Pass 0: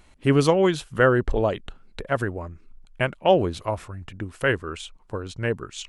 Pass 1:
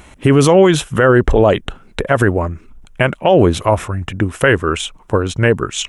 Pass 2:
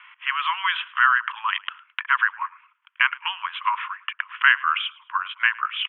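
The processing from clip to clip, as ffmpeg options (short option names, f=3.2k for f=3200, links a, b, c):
-af "highpass=f=46:p=1,equalizer=f=4.5k:t=o:w=0.33:g=-10,alimiter=level_in=17dB:limit=-1dB:release=50:level=0:latency=1,volume=-1dB"
-af "asuperpass=centerf=1800:order=20:qfactor=0.78,aecho=1:1:108|216:0.0708|0.0255"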